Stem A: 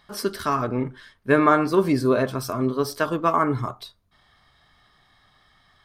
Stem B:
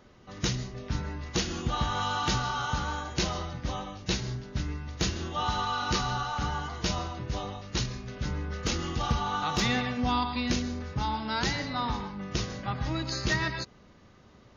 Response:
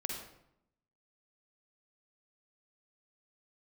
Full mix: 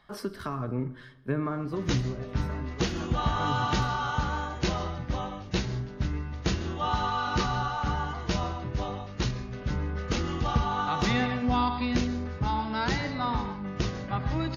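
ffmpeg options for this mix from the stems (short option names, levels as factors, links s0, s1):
-filter_complex "[0:a]acrossover=split=200[s0][s1];[s1]acompressor=threshold=0.0251:ratio=5[s2];[s0][s2]amix=inputs=2:normalize=0,volume=2.11,afade=t=out:st=1.59:d=0.62:silence=0.266073,afade=t=in:st=3.19:d=0.27:silence=0.375837,asplit=3[s3][s4][s5];[s4]volume=0.178[s6];[s5]volume=0.0708[s7];[1:a]adelay=1450,volume=1.33[s8];[2:a]atrim=start_sample=2205[s9];[s6][s9]afir=irnorm=-1:irlink=0[s10];[s7]aecho=0:1:129|258|387|516|645|774|903|1032:1|0.52|0.27|0.141|0.0731|0.038|0.0198|0.0103[s11];[s3][s8][s10][s11]amix=inputs=4:normalize=0,highshelf=f=3800:g=-11.5"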